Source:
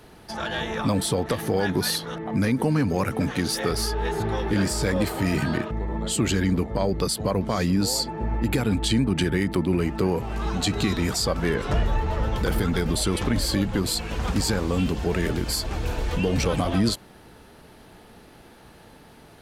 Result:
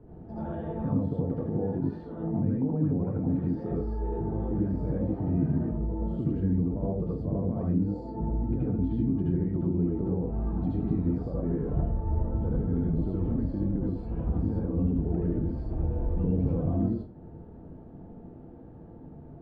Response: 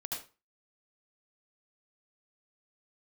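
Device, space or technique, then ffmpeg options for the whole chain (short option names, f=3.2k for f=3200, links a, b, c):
television next door: -filter_complex "[0:a]acompressor=threshold=-31dB:ratio=3,lowpass=370[a];[1:a]atrim=start_sample=2205[b];[a][b]afir=irnorm=-1:irlink=0,volume=5.5dB"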